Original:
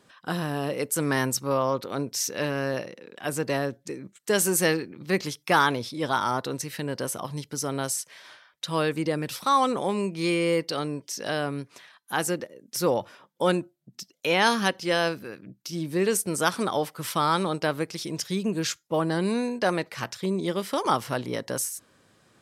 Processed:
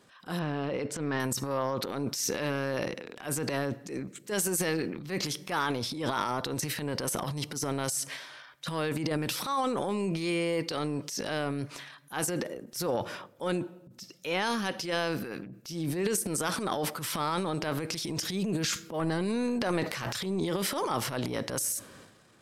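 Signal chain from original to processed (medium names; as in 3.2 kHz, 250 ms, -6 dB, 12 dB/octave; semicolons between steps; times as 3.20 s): compression 6:1, threshold -26 dBFS, peak gain reduction 10.5 dB; 0.39–1.20 s: distance through air 160 m; 18.64–20.40 s: transient shaper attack -1 dB, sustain +11 dB; on a send at -23 dB: reverberation RT60 0.85 s, pre-delay 4 ms; on the sum: transient shaper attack -10 dB, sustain +10 dB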